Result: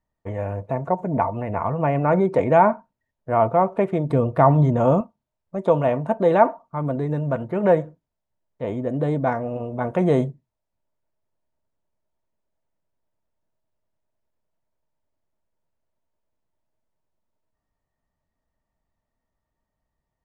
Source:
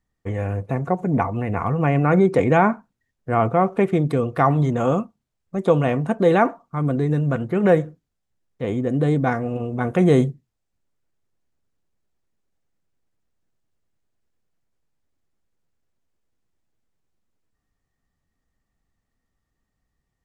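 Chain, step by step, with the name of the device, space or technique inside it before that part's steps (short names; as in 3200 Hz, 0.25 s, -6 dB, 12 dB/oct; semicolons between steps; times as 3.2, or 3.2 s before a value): inside a helmet (high shelf 4600 Hz -7.5 dB; small resonant body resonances 630/910 Hz, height 13 dB, ringing for 35 ms); 4.1–5.01 low shelf 290 Hz +9 dB; gain -4.5 dB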